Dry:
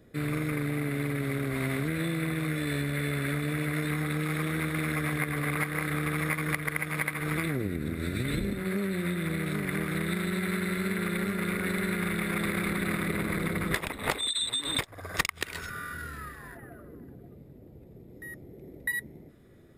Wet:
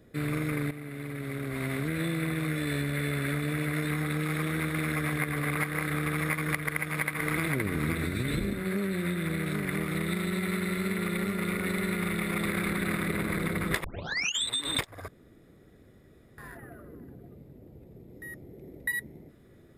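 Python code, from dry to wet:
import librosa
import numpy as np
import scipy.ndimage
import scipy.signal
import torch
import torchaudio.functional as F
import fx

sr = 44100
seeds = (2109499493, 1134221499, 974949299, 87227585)

y = fx.echo_throw(x, sr, start_s=6.66, length_s=0.87, ms=520, feedback_pct=30, wet_db=-3.0)
y = fx.notch(y, sr, hz=1600.0, q=8.0, at=(9.74, 12.48))
y = fx.edit(y, sr, fx.fade_in_from(start_s=0.71, length_s=1.32, floor_db=-12.0),
    fx.tape_start(start_s=13.84, length_s=0.6),
    fx.room_tone_fill(start_s=15.08, length_s=1.3), tone=tone)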